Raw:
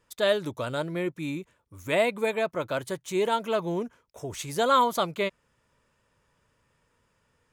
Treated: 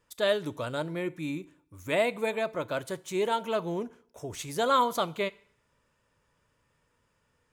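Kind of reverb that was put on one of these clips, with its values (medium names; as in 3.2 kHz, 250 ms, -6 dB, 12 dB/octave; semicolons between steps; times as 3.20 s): FDN reverb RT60 0.6 s, low-frequency decay 1×, high-frequency decay 0.95×, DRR 16.5 dB; trim -2.5 dB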